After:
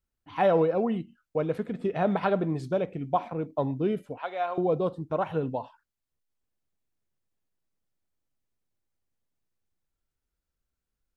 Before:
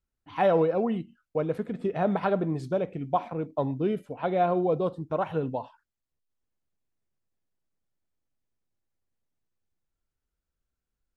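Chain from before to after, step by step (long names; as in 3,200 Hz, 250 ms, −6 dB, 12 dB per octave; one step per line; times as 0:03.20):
0:01.40–0:02.86: dynamic equaliser 3,100 Hz, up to +3 dB, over −46 dBFS, Q 0.7
0:04.18–0:04.58: high-pass filter 860 Hz 12 dB per octave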